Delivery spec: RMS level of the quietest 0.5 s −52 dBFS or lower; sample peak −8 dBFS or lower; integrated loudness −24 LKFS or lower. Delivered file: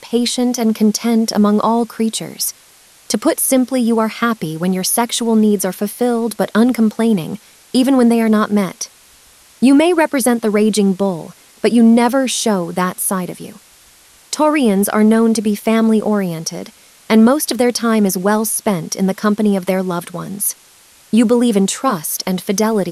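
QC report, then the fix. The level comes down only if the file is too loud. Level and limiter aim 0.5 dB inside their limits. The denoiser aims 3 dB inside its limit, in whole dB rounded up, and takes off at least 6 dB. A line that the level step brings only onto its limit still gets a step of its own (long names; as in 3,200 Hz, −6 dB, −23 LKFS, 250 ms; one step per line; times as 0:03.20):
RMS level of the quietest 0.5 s −47 dBFS: out of spec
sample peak −2.5 dBFS: out of spec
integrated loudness −15.0 LKFS: out of spec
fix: level −9.5 dB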